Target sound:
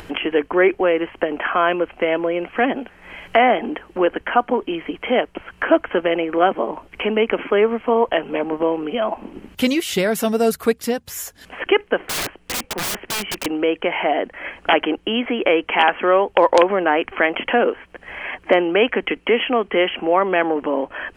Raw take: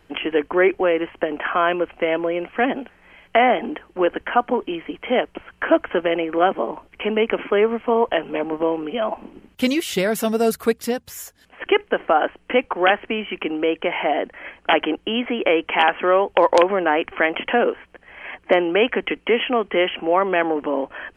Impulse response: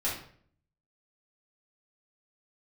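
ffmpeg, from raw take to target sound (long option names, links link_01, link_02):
-filter_complex "[0:a]asplit=2[link_01][link_02];[link_02]acompressor=mode=upward:threshold=-18dB:ratio=2.5,volume=-1.5dB[link_03];[link_01][link_03]amix=inputs=2:normalize=0,asettb=1/sr,asplit=3[link_04][link_05][link_06];[link_04]atrim=end=12.094[link_07];[link_05]atrim=start=12.09:end=13.46,asetpts=PTS-STARTPTS,afade=type=in:duration=0.004:curve=qsin,afade=type=out:start_time=1.366:duration=0.004:curve=qsin,aeval=exprs='(mod(5.62*val(0)+1,2)-1)/5.62':channel_layout=same[link_08];[link_06]atrim=start=13.456[link_09];[link_07][link_08]acrossfade=duration=0.004:curve1=hsin:curve2=qsin[link_10];[link_10][link_09]acrossfade=duration=0.004:curve1=qsin:curve2=hsin,volume=-4dB"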